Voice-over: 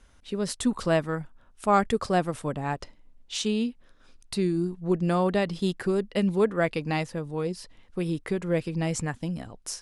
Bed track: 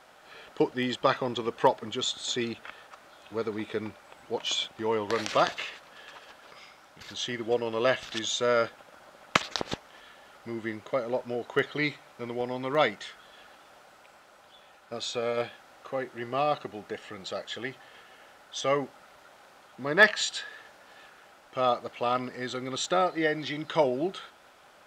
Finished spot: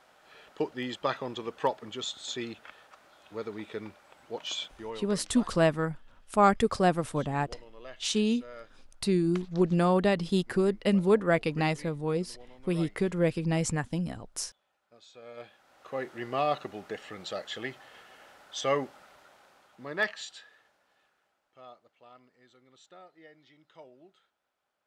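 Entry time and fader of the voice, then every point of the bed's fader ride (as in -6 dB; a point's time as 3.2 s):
4.70 s, 0.0 dB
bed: 4.72 s -5.5 dB
5.24 s -21.5 dB
15.08 s -21.5 dB
16.03 s -1 dB
18.96 s -1 dB
21.95 s -27 dB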